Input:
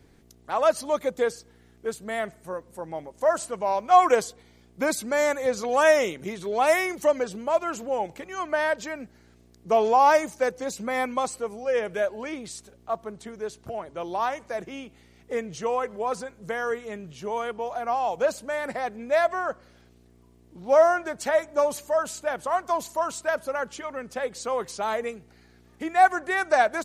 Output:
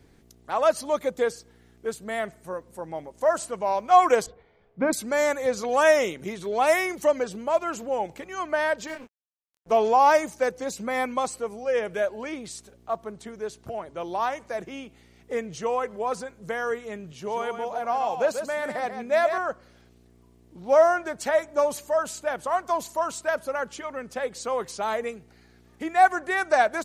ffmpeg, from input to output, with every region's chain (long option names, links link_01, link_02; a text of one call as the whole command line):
ffmpeg -i in.wav -filter_complex "[0:a]asettb=1/sr,asplit=3[link_01][link_02][link_03];[link_01]atrim=end=4.264[link_04];[link_02]atrim=start=4.26:end=4.93,asetpts=PTS-STARTPTS,afade=type=in:duration=0.004:curve=qsin,afade=type=out:start_time=0.666:duration=0.004:curve=qsin,lowpass=2300,aemphasis=mode=reproduction:type=bsi,bandreject=frequency=60:width_type=h:width=6,bandreject=frequency=120:width_type=h:width=6,bandreject=frequency=180:width_type=h:width=6,bandreject=frequency=240:width_type=h:width=6,bandreject=frequency=300:width_type=h:width=6,bandreject=frequency=360:width_type=h:width=6[link_05];[link_03]atrim=start=4.926[link_06];[link_04][link_05]acrossfade=duration=0.004:curve1=hsin:curve2=qsin[link_07];[link_07][link_06]acrossfade=duration=0.004:curve1=qsin:curve2=hsin,asettb=1/sr,asplit=3[link_08][link_09][link_10];[link_08]atrim=end=8.874[link_11];[link_09]atrim=start=8.87:end=9.72,asetpts=PTS-STARTPTS,afade=type=in:duration=0.004:curve=qsin,afade=type=out:start_time=0.846:duration=0.004:curve=qsin,asubboost=boost=9.5:cutoff=120,aeval=exprs='sgn(val(0))*max(abs(val(0))-0.00944,0)':channel_layout=same,asplit=2[link_12][link_13];[link_13]adelay=25,volume=-3.5dB[link_14];[link_12][link_14]amix=inputs=2:normalize=0,atrim=end_sample=37485[link_15];[link_10]atrim=start=9.716[link_16];[link_11][link_15]acrossfade=duration=0.004:curve1=hsin:curve2=qsin[link_17];[link_17][link_16]acrossfade=duration=0.004:curve1=qsin:curve2=hsin,asettb=1/sr,asplit=3[link_18][link_19][link_20];[link_18]atrim=end=17.124[link_21];[link_19]atrim=start=17.12:end=19.38,asetpts=PTS-STARTPTS,afade=type=in:duration=0.004:curve=qsin,afade=type=out:start_time=2.256:duration=0.004:curve=qsin,highpass=75,aecho=1:1:139:0.398,atrim=end_sample=99666[link_22];[link_20]atrim=start=19.376[link_23];[link_21][link_22]acrossfade=duration=0.004:curve1=hsin:curve2=qsin[link_24];[link_24][link_23]acrossfade=duration=0.004:curve1=qsin:curve2=hsin" out.wav